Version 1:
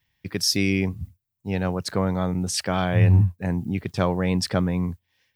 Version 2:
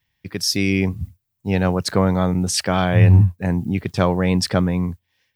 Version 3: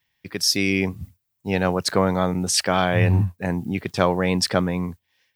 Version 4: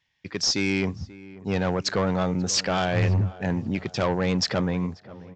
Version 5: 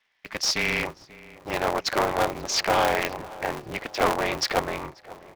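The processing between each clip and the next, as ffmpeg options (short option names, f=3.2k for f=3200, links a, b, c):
-af "dynaudnorm=f=220:g=7:m=7.5dB"
-af "lowshelf=f=180:g=-11,volume=1dB"
-filter_complex "[0:a]aresample=16000,asoftclip=type=tanh:threshold=-17dB,aresample=44100,asplit=2[a][b];[b]adelay=536,lowpass=f=1.5k:p=1,volume=-18dB,asplit=2[c][d];[d]adelay=536,lowpass=f=1.5k:p=1,volume=0.54,asplit=2[e][f];[f]adelay=536,lowpass=f=1.5k:p=1,volume=0.54,asplit=2[g][h];[h]adelay=536,lowpass=f=1.5k:p=1,volume=0.54,asplit=2[i][j];[j]adelay=536,lowpass=f=1.5k:p=1,volume=0.54[k];[a][c][e][g][i][k]amix=inputs=6:normalize=0"
-af "highpass=f=290:w=0.5412,highpass=f=290:w=1.3066,equalizer=f=380:t=q:w=4:g=-6,equalizer=f=660:t=q:w=4:g=7,equalizer=f=1k:t=q:w=4:g=7,equalizer=f=2.1k:t=q:w=4:g=6,lowpass=f=6.2k:w=0.5412,lowpass=f=6.2k:w=1.3066,aeval=exprs='val(0)*sgn(sin(2*PI*110*n/s))':c=same"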